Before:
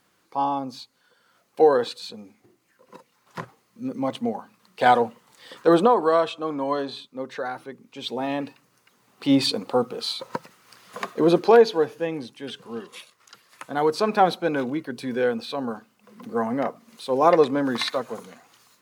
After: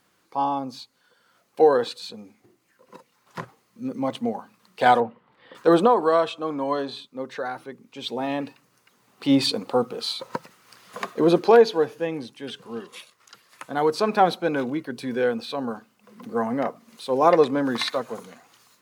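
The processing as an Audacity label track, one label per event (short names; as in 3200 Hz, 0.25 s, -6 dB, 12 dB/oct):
5.000000	5.550000	air absorption 460 m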